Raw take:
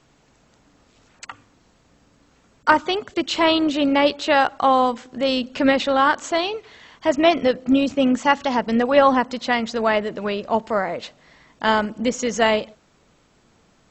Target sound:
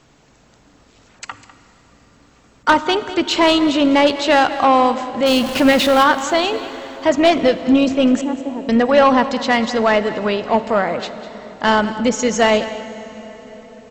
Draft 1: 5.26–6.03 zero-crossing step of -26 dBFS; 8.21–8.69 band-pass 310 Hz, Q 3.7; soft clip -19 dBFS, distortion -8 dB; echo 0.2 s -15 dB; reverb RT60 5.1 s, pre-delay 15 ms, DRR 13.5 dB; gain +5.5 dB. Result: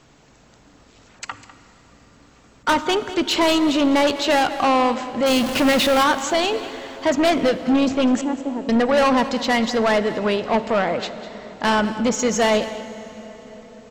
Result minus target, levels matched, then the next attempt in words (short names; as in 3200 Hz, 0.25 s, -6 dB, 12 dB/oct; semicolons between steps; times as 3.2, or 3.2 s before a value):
soft clip: distortion +8 dB
5.26–6.03 zero-crossing step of -26 dBFS; 8.21–8.69 band-pass 310 Hz, Q 3.7; soft clip -10.5 dBFS, distortion -16 dB; echo 0.2 s -15 dB; reverb RT60 5.1 s, pre-delay 15 ms, DRR 13.5 dB; gain +5.5 dB